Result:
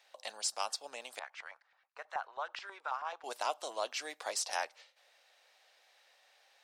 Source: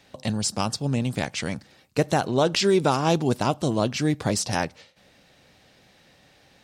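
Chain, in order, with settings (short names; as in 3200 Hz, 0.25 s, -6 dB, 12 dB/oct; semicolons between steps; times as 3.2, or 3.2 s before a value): HPF 610 Hz 24 dB/oct; 1.19–3.24 LFO band-pass saw up 9.3 Hz 880–1800 Hz; gain -8 dB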